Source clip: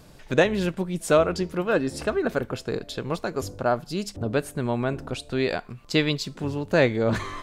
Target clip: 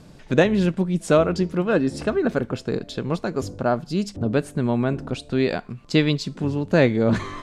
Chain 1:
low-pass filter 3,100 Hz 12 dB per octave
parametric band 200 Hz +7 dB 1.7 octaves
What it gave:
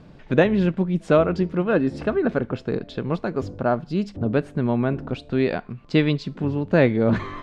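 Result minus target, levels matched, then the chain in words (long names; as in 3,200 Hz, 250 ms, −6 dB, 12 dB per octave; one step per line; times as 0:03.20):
8,000 Hz band −14.0 dB
low-pass filter 9,000 Hz 12 dB per octave
parametric band 200 Hz +7 dB 1.7 octaves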